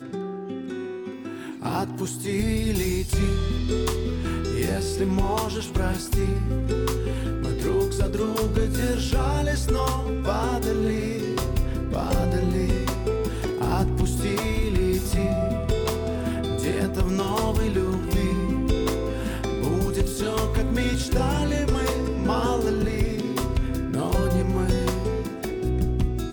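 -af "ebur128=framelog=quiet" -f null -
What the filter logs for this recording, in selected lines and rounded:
Integrated loudness:
  I:         -25.5 LUFS
  Threshold: -35.4 LUFS
Loudness range:
  LRA:         1.2 LU
  Threshold: -45.3 LUFS
  LRA low:   -25.8 LUFS
  LRA high:  -24.6 LUFS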